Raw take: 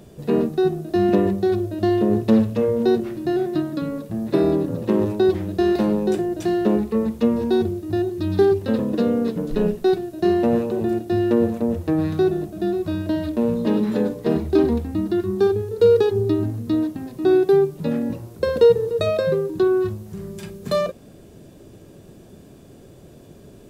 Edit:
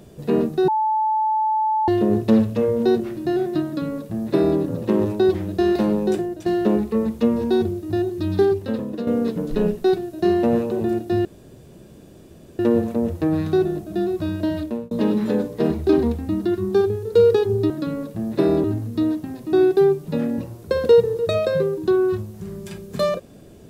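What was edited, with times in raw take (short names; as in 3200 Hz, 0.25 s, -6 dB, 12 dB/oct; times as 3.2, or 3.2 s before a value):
0.68–1.88 bleep 870 Hz -17 dBFS
3.65–4.59 copy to 16.36
6.15–6.46 fade out, to -10 dB
8.27–9.07 fade out, to -8.5 dB
11.25 insert room tone 1.34 s
13.24–13.57 fade out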